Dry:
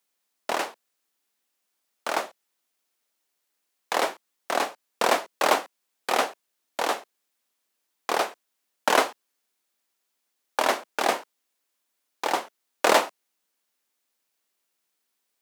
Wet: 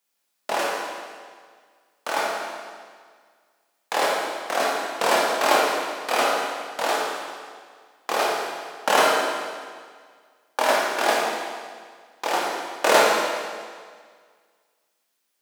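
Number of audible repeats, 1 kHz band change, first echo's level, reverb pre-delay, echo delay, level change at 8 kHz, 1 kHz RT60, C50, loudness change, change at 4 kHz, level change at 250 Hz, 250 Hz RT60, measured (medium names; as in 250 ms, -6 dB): no echo, +4.0 dB, no echo, 18 ms, no echo, +4.0 dB, 1.8 s, -1.0 dB, +3.0 dB, +4.5 dB, +3.0 dB, 1.8 s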